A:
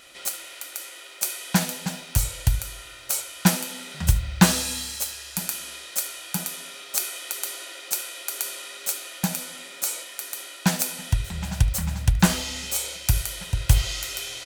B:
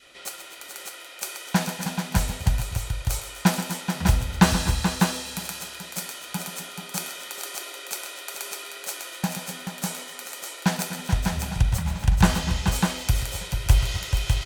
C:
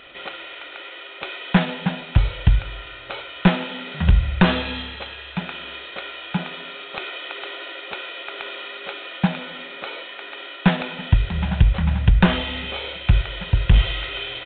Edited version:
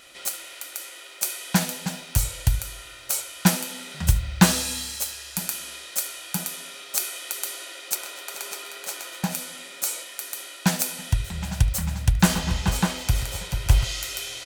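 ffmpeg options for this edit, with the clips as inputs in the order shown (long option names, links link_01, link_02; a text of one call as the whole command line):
ffmpeg -i take0.wav -i take1.wav -filter_complex "[1:a]asplit=2[link_01][link_02];[0:a]asplit=3[link_03][link_04][link_05];[link_03]atrim=end=7.952[link_06];[link_01]atrim=start=7.948:end=9.322[link_07];[link_04]atrim=start=9.318:end=12.352[link_08];[link_02]atrim=start=12.348:end=13.842[link_09];[link_05]atrim=start=13.838[link_10];[link_06][link_07]acrossfade=duration=0.004:curve1=hsin:curve2=hsin[link_11];[link_11][link_08]acrossfade=duration=0.004:curve1=hsin:curve2=hsin[link_12];[link_12][link_09]acrossfade=duration=0.004:curve1=hsin:curve2=hsin[link_13];[link_13][link_10]acrossfade=duration=0.004:curve1=hsin:curve2=hsin" out.wav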